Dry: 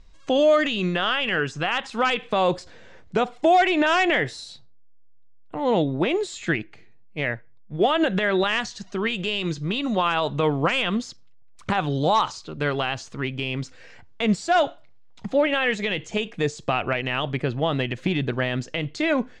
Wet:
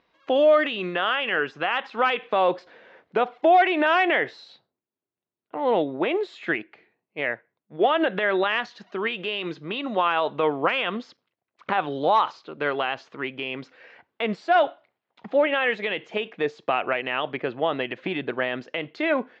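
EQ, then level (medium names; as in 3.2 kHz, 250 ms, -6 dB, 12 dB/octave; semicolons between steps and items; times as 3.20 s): band-pass 360–3200 Hz; distance through air 110 m; +1.5 dB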